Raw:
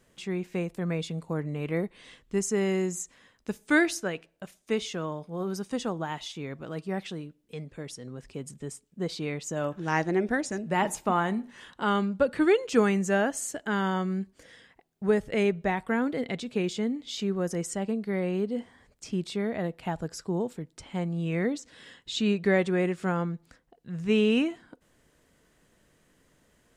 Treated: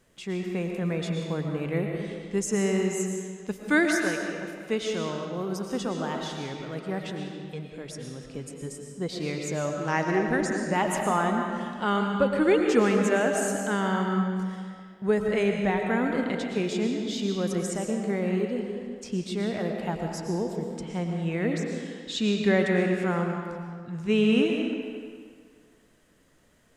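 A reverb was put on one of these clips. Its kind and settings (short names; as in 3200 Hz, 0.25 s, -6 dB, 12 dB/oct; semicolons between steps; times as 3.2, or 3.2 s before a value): digital reverb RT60 1.9 s, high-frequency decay 0.8×, pre-delay 75 ms, DRR 2 dB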